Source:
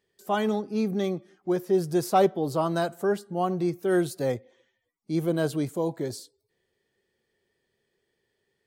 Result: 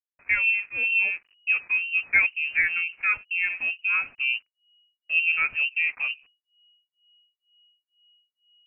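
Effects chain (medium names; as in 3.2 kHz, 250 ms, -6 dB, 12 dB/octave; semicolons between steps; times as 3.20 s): gain riding within 4 dB 0.5 s; hysteresis with a dead band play -41.5 dBFS; harmonic tremolo 2.1 Hz, depth 100%, crossover 420 Hz; frequency inversion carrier 2.9 kHz; trim +6 dB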